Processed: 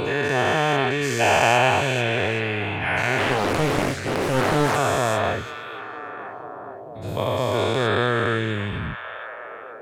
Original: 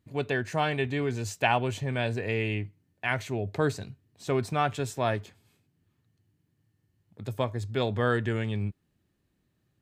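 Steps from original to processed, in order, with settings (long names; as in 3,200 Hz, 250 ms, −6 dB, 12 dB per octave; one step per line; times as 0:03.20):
every bin's largest magnitude spread in time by 480 ms
on a send: echo through a band-pass that steps 469 ms, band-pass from 2,800 Hz, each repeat −0.7 octaves, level −6.5 dB
0:03.18–0:04.76: on the sum: highs frequency-modulated by the lows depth 0.91 ms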